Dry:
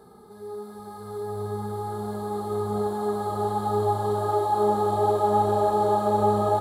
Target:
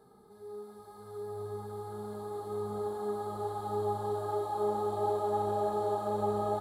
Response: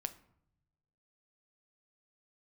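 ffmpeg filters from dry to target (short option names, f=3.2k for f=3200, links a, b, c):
-filter_complex "[1:a]atrim=start_sample=2205[a];[0:a][a]afir=irnorm=-1:irlink=0,volume=-8dB"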